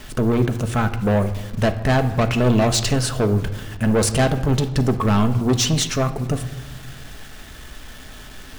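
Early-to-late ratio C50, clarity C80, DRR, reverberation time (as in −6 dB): 12.5 dB, 14.5 dB, 7.0 dB, 1.2 s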